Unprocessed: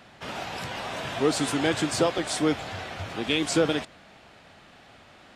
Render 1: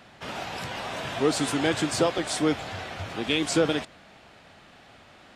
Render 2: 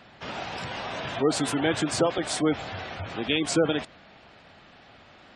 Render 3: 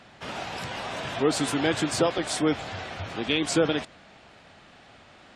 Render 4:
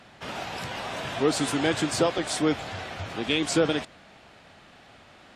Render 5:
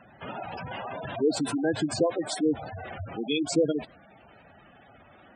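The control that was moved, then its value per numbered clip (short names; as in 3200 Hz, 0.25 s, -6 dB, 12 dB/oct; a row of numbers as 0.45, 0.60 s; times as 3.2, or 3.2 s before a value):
spectral gate, under each frame's peak: -60, -25, -35, -45, -10 dB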